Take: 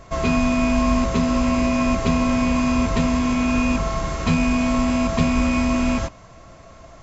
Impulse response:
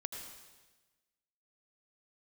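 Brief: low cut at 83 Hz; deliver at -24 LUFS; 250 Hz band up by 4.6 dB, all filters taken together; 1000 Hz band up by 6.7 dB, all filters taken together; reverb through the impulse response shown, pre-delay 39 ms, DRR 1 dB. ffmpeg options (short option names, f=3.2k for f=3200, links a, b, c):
-filter_complex "[0:a]highpass=83,equalizer=f=250:t=o:g=4.5,equalizer=f=1k:t=o:g=7.5,asplit=2[a][b];[1:a]atrim=start_sample=2205,adelay=39[c];[b][c]afir=irnorm=-1:irlink=0,volume=0dB[d];[a][d]amix=inputs=2:normalize=0,volume=-7dB"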